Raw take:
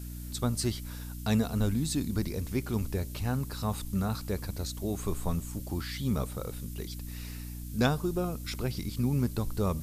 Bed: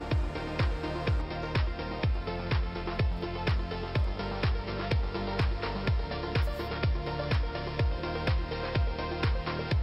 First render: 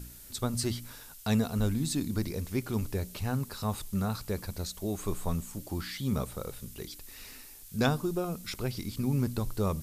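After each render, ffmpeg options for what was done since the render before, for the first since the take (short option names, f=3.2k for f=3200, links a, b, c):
-af "bandreject=f=60:t=h:w=4,bandreject=f=120:t=h:w=4,bandreject=f=180:t=h:w=4,bandreject=f=240:t=h:w=4,bandreject=f=300:t=h:w=4"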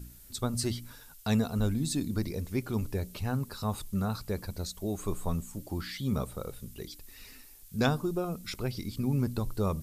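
-af "afftdn=nr=6:nf=-50"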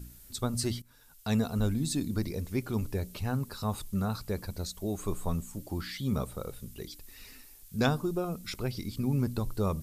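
-filter_complex "[0:a]asplit=2[a][b];[a]atrim=end=0.82,asetpts=PTS-STARTPTS,afade=t=out:st=0.816:d=0.004:c=hsin:silence=0.112202[c];[b]atrim=start=0.82,asetpts=PTS-STARTPTS,afade=t=in:d=0.61:silence=0.112202[d];[c][d]concat=n=2:v=0:a=1"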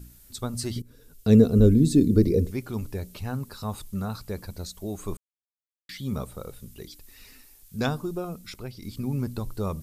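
-filter_complex "[0:a]asettb=1/sr,asplit=3[a][b][c];[a]atrim=end=0.764[d];[b]atrim=start=0.76:end=2.51,asetpts=PTS-STARTPTS,afade=t=in:d=0.004:c=qsin,afade=t=out:st=1.746:d=0.004:c=qsin,lowshelf=f=600:t=q:w=3:g=10.5[e];[c]atrim=start=2.506[f];[d][e]acrossfade=d=0.004:c1=hsin:c2=qsin[g];[g][f]acrossfade=d=0.004:c1=qsin:c2=hsin,asplit=4[h][i][j][k];[h]atrim=end=5.17,asetpts=PTS-STARTPTS,afade=t=out:st=5.166:d=0.004:c=hsin[l];[i]atrim=start=5.17:end=5.89,asetpts=PTS-STARTPTS,volume=0[m];[j]atrim=start=5.89:end=8.82,asetpts=PTS-STARTPTS,afade=t=in:d=0.004:c=hsin,afade=t=out:st=2.36:d=0.57:silence=0.446684[n];[k]atrim=start=8.82,asetpts=PTS-STARTPTS,afade=t=in:d=0.004:c=hsin:silence=0.446684[o];[l][m][n][o]concat=n=4:v=0:a=1"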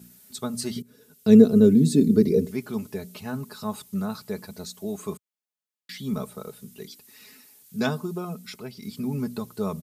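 -af "highpass=f=110:w=0.5412,highpass=f=110:w=1.3066,aecho=1:1:4.7:0.63"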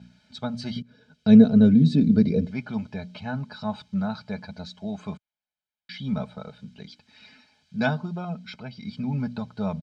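-af "lowpass=f=4.3k:w=0.5412,lowpass=f=4.3k:w=1.3066,aecho=1:1:1.3:0.75"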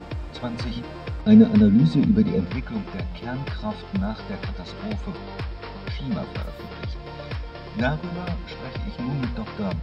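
-filter_complex "[1:a]volume=-3dB[a];[0:a][a]amix=inputs=2:normalize=0"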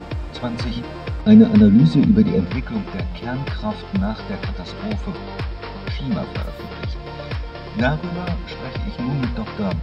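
-af "volume=4.5dB,alimiter=limit=-2dB:level=0:latency=1"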